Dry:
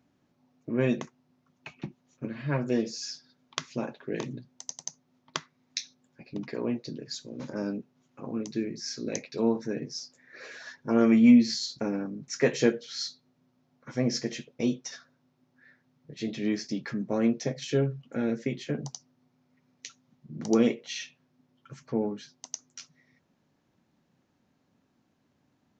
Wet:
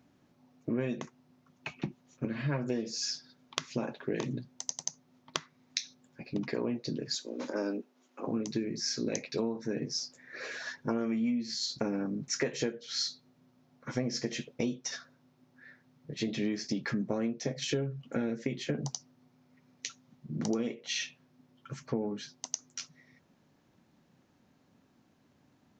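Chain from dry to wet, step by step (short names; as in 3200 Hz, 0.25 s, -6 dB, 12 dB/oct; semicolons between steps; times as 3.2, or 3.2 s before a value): 7.15–8.28 HPF 270 Hz 24 dB/oct; compressor 16:1, threshold -32 dBFS, peak gain reduction 19.5 dB; gain +4 dB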